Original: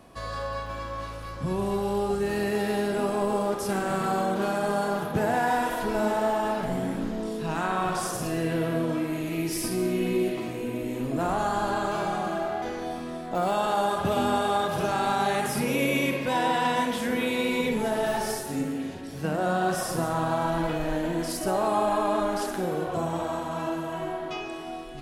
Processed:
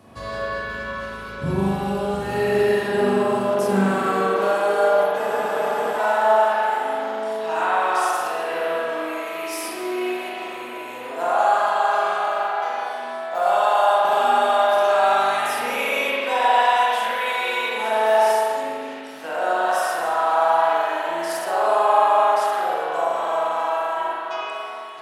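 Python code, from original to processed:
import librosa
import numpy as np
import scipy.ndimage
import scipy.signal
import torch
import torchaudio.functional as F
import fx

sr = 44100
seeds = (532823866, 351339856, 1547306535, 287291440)

y = fx.filter_sweep_highpass(x, sr, from_hz=72.0, to_hz=760.0, start_s=2.65, end_s=5.32, q=1.4)
y = fx.rev_spring(y, sr, rt60_s=1.8, pass_ms=(41,), chirp_ms=40, drr_db=-6.5)
y = fx.spec_freeze(y, sr, seeds[0], at_s=5.21, hold_s=0.76)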